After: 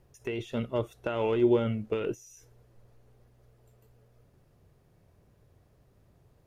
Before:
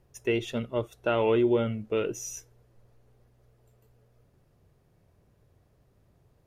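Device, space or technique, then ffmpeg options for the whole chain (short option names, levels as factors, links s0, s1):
de-esser from a sidechain: -filter_complex "[0:a]asplit=2[s0][s1];[s1]highpass=6200,apad=whole_len=284939[s2];[s0][s2]sidechaincompress=threshold=0.00141:ratio=5:attack=1.9:release=41,volume=1.19"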